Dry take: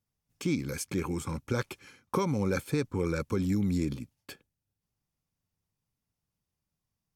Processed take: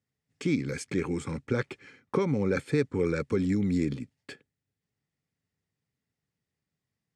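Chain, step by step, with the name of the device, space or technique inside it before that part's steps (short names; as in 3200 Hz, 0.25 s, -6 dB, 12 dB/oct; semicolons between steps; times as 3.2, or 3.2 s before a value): car door speaker (speaker cabinet 84–8400 Hz, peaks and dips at 140 Hz +3 dB, 260 Hz +4 dB, 430 Hz +6 dB, 1000 Hz -5 dB, 1900 Hz +9 dB, 6000 Hz -5 dB); 1.45–2.57 high shelf 4100 Hz -6 dB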